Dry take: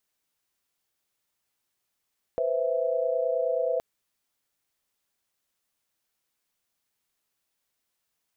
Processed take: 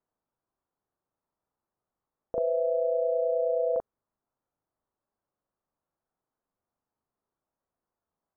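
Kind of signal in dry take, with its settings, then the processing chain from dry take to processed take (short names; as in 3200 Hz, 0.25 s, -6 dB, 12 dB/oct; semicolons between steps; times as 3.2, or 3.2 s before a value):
chord B4/C5/E5 sine, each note -28 dBFS 1.42 s
LPF 1200 Hz 24 dB/oct; on a send: reverse echo 39 ms -3 dB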